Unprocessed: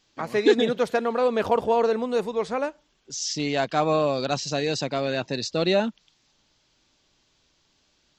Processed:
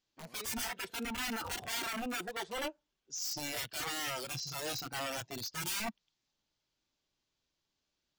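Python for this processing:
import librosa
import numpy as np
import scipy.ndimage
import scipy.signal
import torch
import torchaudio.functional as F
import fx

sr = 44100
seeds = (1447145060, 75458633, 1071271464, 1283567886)

y = (np.mod(10.0 ** (23.5 / 20.0) * x + 1.0, 2.0) - 1.0) / 10.0 ** (23.5 / 20.0)
y = fx.noise_reduce_blind(y, sr, reduce_db=12)
y = y * 10.0 ** (-6.5 / 20.0)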